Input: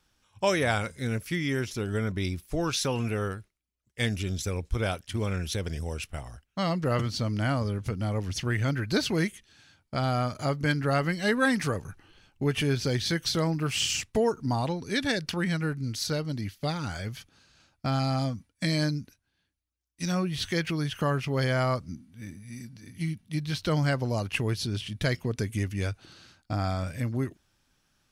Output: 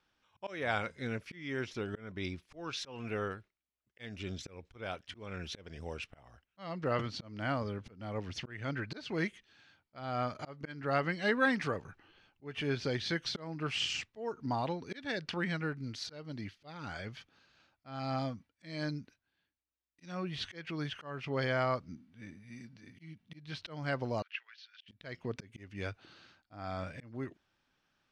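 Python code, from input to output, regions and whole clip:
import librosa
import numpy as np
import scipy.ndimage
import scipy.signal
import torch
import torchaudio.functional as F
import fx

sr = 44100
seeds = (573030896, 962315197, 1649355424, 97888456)

y = fx.chain(x, sr, fx.cheby1_bandpass(low_hz=1500.0, high_hz=6300.0, order=3),
    fx.level_steps(step_db=10),
    fx.air_absorb(metres=170.0), at=(24.22, 24.88))
y = scipy.signal.sosfilt(scipy.signal.butter(2, 3600.0, 'lowpass', fs=sr, output='sos'), y)
y = fx.auto_swell(y, sr, attack_ms=301.0)
y = fx.low_shelf(y, sr, hz=160.0, db=-12.0)
y = y * librosa.db_to_amplitude(-3.0)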